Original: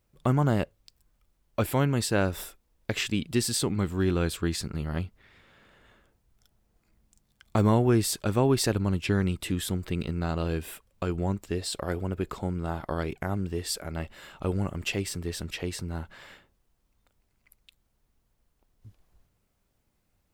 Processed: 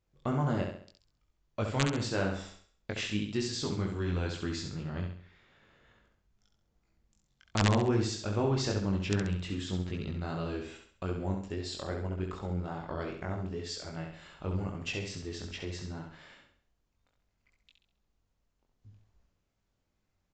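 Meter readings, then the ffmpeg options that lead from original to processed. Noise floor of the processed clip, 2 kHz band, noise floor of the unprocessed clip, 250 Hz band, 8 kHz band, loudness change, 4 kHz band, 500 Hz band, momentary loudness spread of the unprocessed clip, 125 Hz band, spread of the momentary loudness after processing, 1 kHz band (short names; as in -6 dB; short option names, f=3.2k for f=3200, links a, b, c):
-79 dBFS, -3.5 dB, -73 dBFS, -5.5 dB, -9.0 dB, -5.0 dB, -4.0 dB, -5.5 dB, 11 LU, -5.0 dB, 12 LU, -4.5 dB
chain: -af "flanger=delay=19:depth=3.1:speed=2.5,aresample=16000,aeval=exprs='(mod(5.01*val(0)+1,2)-1)/5.01':c=same,aresample=44100,aecho=1:1:67|134|201|268|335:0.531|0.218|0.0892|0.0366|0.015,volume=-3.5dB"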